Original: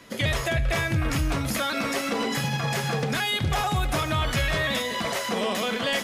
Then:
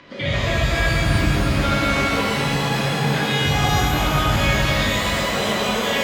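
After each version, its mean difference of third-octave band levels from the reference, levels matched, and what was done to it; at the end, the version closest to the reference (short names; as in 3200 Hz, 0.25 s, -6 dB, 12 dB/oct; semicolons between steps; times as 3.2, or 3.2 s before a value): 5.5 dB: LPF 4400 Hz 24 dB/oct; upward compressor, threshold -43 dBFS; shimmer reverb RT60 3.4 s, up +12 st, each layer -8 dB, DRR -8 dB; gain -3 dB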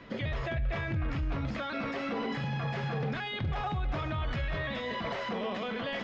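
8.0 dB: low shelf 100 Hz +7 dB; limiter -25 dBFS, peak gain reduction 12.5 dB; Gaussian blur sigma 2.3 samples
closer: first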